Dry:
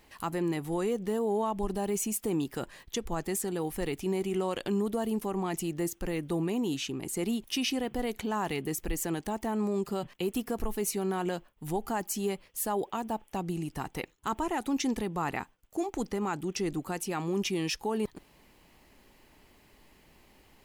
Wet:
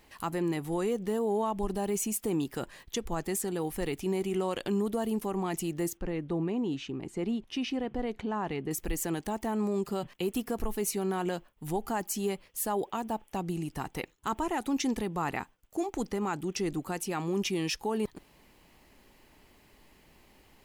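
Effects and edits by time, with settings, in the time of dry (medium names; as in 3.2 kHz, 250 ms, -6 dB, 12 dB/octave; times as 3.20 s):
5.97–8.71 s: tape spacing loss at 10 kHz 21 dB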